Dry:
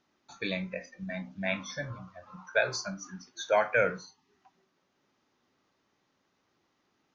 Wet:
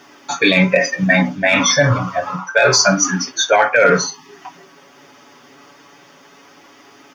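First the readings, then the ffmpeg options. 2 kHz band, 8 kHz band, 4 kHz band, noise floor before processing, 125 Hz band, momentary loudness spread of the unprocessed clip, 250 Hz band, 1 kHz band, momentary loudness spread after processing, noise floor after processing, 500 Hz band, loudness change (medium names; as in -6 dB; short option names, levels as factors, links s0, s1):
+17.5 dB, no reading, +22.0 dB, -76 dBFS, +21.5 dB, 17 LU, +21.0 dB, +17.5 dB, 8 LU, -47 dBFS, +15.5 dB, +17.5 dB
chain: -filter_complex "[0:a]highpass=f=290:p=1,bandreject=f=4000:w=6.2,aecho=1:1:7.1:0.65,areverse,acompressor=threshold=0.0178:ratio=6,areverse,flanger=delay=2.6:depth=6.1:regen=-61:speed=0.29:shape=triangular,asplit=2[s0][s1];[s1]acrusher=bits=4:mix=0:aa=0.5,volume=0.282[s2];[s0][s2]amix=inputs=2:normalize=0,alimiter=level_in=50.1:limit=0.891:release=50:level=0:latency=1,volume=0.891"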